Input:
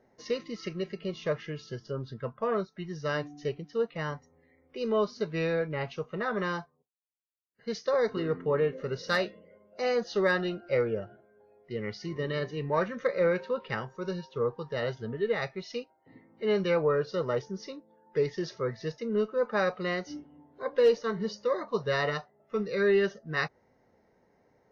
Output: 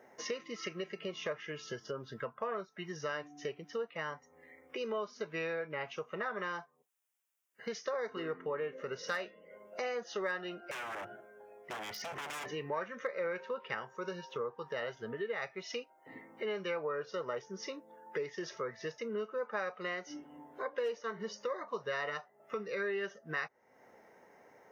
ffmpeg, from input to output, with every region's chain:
-filter_complex "[0:a]asettb=1/sr,asplit=3[s0][s1][s2];[s0]atrim=end=10.714[s3];[s1]atrim=start=10.71:end=12.46,asetpts=PTS-STARTPTS,afade=t=in:d=0.004:c=qsin,afade=t=out:st=1.746:d=0.004:c=qsin,acompressor=threshold=0.0251:ratio=5:attack=3.2:release=140:knee=1:detection=peak,aeval=exprs='0.0106*(abs(mod(val(0)/0.0106+3,4)-2)-1)':c=same[s4];[s2]atrim=start=12.456[s5];[s3][s4]acrossfade=d=0.004:c1=hsin:c2=qsin[s6];[s6][s5]acrossfade=d=0.004:c1=qsin:c2=hsin,highpass=f=870:p=1,equalizer=f=4300:w=2.7:g=-12,acompressor=threshold=0.00251:ratio=3,volume=3.98"

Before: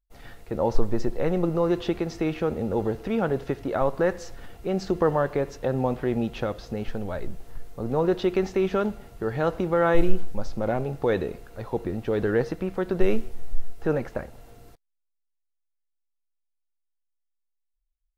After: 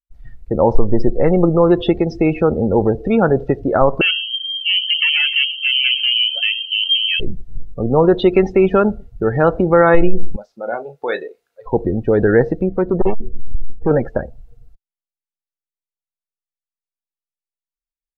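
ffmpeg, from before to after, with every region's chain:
-filter_complex "[0:a]asettb=1/sr,asplit=3[s0][s1][s2];[s0]atrim=end=4.014[s3];[s1]atrim=start=4.01:end=7.2,asetpts=PTS-STARTPTS,afade=t=in:d=0.004:c=qsin,afade=t=out:st=3.186:d=0.004:c=qsin,aeval=exprs='(tanh(22.4*val(0)+0.35)-tanh(0.35))/22.4':c=same,asplit=6[s4][s5][s6][s7][s8][s9];[s5]adelay=107,afreqshift=-120,volume=0.282[s10];[s6]adelay=214,afreqshift=-240,volume=0.145[s11];[s7]adelay=321,afreqshift=-360,volume=0.0733[s12];[s8]adelay=428,afreqshift=-480,volume=0.0376[s13];[s9]adelay=535,afreqshift=-600,volume=0.0191[s14];[s4][s10][s11][s12][s13][s14]amix=inputs=6:normalize=0,atrim=end_sample=140679,lowpass=f=2700:t=q:w=0.5098,lowpass=f=2700:t=q:w=0.6013,lowpass=f=2700:t=q:w=0.9,lowpass=f=2700:t=q:w=2.563,afreqshift=-3200[s15];[s2]atrim=start=7.196[s16];[s3][s15]acrossfade=d=0.004:c1=hsin:c2=qsin[s17];[s17][s16]acrossfade=d=0.004:c1=qsin:c2=hsin,asettb=1/sr,asplit=3[s18][s19][s20];[s18]atrim=end=10.364[s21];[s19]atrim=start=10.36:end=11.66,asetpts=PTS-STARTPTS,afade=t=in:d=0.004:c=qsin,afade=t=out:st=1.296:d=0.004:c=qsin,highpass=f=1400:p=1,asplit=2[s22][s23];[s23]adelay=34,volume=0.398[s24];[s22][s24]amix=inputs=2:normalize=0,atrim=end_sample=57330[s25];[s20]atrim=start=11.656[s26];[s21][s25]acrossfade=d=0.004:c1=hsin:c2=qsin[s27];[s27][s26]acrossfade=d=0.004:c1=qsin:c2=hsin,asettb=1/sr,asplit=3[s28][s29][s30];[s28]atrim=end=12.664[s31];[s29]atrim=start=12.66:end=13.91,asetpts=PTS-STARTPTS,afade=t=in:d=0.004:c=qsin,afade=t=out:st=1.246:d=0.004:c=qsin,highshelf=f=2500:g=-9.5,asoftclip=type=hard:threshold=0.0944[s32];[s30]atrim=start=13.906[s33];[s31][s32]acrossfade=d=0.004:c1=hsin:c2=qsin[s34];[s34][s33]acrossfade=d=0.004:c1=qsin:c2=hsin,afftdn=nr=29:nf=-34,adynamicequalizer=threshold=0.00501:dfrequency=4300:dqfactor=0.73:tfrequency=4300:tqfactor=0.73:attack=5:release=100:ratio=0.375:range=2.5:mode=boostabove:tftype=bell,alimiter=level_in=3.98:limit=0.891:release=50:level=0:latency=1,volume=0.891"

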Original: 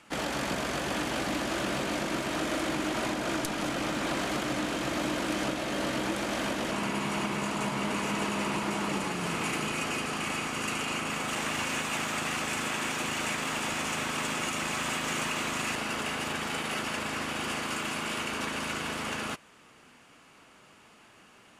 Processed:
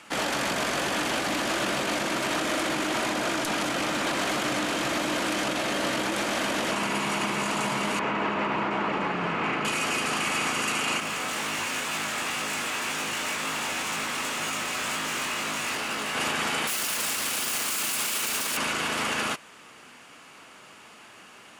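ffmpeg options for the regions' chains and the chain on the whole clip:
-filter_complex "[0:a]asettb=1/sr,asplit=3[s0][s1][s2];[s0]atrim=end=7.994[s3];[s1]atrim=start=7.99:end=9.65,asetpts=PTS-STARTPTS,afade=t=in:d=0.004:c=qsin,afade=t=out:st=1.656:d=0.004:c=qsin,lowpass=2100,bandreject=f=50:t=h:w=6,bandreject=f=100:t=h:w=6,bandreject=f=150:t=h:w=6,bandreject=f=200:t=h:w=6,bandreject=f=250:t=h:w=6,bandreject=f=300:t=h:w=6,bandreject=f=350:t=h:w=6[s4];[s2]atrim=start=9.646[s5];[s3][s4]acrossfade=d=0.004:c1=hsin:c2=qsin[s6];[s6][s5]acrossfade=d=0.004:c1=qsin:c2=hsin,asettb=1/sr,asplit=3[s7][s8][s9];[s7]atrim=end=11.004[s10];[s8]atrim=start=11:end=16.15,asetpts=PTS-STARTPTS,afade=t=in:d=0.004:c=qsin,afade=t=out:st=5.146:d=0.004:c=qsin,asoftclip=type=hard:threshold=0.0251,flanger=delay=19:depth=2.7:speed=2[s11];[s9]atrim=start=16.146[s12];[s10][s11]acrossfade=d=0.004:c1=hsin:c2=qsin[s13];[s13][s12]acrossfade=d=0.004:c1=qsin:c2=hsin,asettb=1/sr,asplit=3[s14][s15][s16];[s14]atrim=end=16.674[s17];[s15]atrim=start=16.67:end=18.57,asetpts=PTS-STARTPTS,afade=t=in:d=0.004:c=qsin,afade=t=out:st=1.896:d=0.004:c=qsin,asoftclip=type=hard:threshold=0.0141,aemphasis=mode=production:type=75kf[s18];[s16]atrim=start=18.566[s19];[s17][s18]acrossfade=d=0.004:c1=hsin:c2=qsin[s20];[s20][s19]acrossfade=d=0.004:c1=qsin:c2=hsin,lowshelf=f=72:g=-9,alimiter=level_in=1.19:limit=0.0631:level=0:latency=1:release=26,volume=0.841,lowshelf=f=500:g=-5,volume=2.66"

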